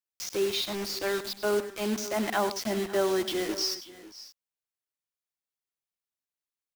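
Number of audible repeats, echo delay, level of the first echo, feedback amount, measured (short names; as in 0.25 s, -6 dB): 3, 0.1 s, -12.5 dB, no steady repeat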